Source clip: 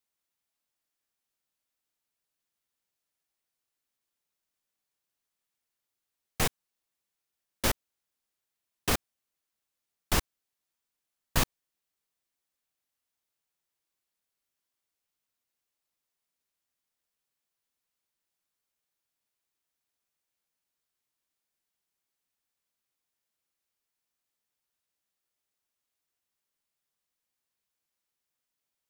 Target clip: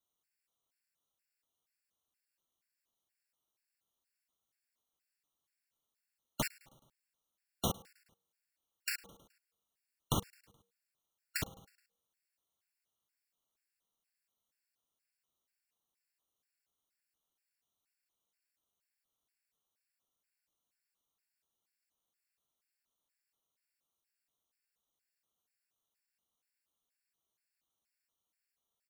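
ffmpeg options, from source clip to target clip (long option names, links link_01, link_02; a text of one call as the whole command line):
ffmpeg -i in.wav -af "bandreject=frequency=331.8:width_type=h:width=4,bandreject=frequency=663.6:width_type=h:width=4,bandreject=frequency=995.4:width_type=h:width=4,acompressor=threshold=-29dB:ratio=6,aeval=exprs='val(0)*sin(2*PI*140*n/s)':channel_layout=same,aecho=1:1:106|212|318|424:0.0708|0.0396|0.0222|0.0124,afftfilt=real='re*gt(sin(2*PI*2.1*pts/sr)*(1-2*mod(floor(b*sr/1024/1400),2)),0)':imag='im*gt(sin(2*PI*2.1*pts/sr)*(1-2*mod(floor(b*sr/1024/1400),2)),0)':win_size=1024:overlap=0.75,volume=3.5dB" out.wav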